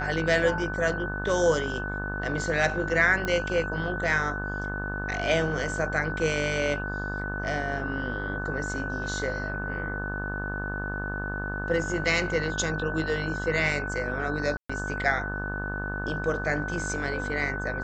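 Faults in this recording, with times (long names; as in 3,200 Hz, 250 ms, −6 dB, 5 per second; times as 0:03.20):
mains buzz 50 Hz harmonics 35 −34 dBFS
whistle 1,500 Hz −33 dBFS
0:03.25: click −16 dBFS
0:14.57–0:14.70: drop-out 125 ms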